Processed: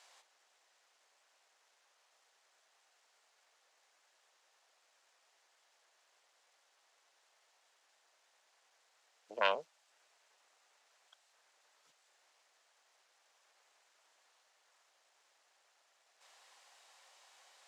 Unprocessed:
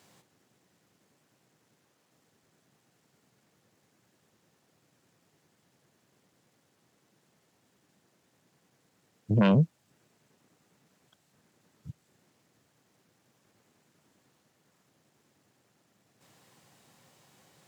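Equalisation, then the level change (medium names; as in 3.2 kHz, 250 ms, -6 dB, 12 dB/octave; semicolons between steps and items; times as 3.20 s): high-pass 630 Hz 24 dB/octave; distance through air 70 m; treble shelf 3.8 kHz +7 dB; 0.0 dB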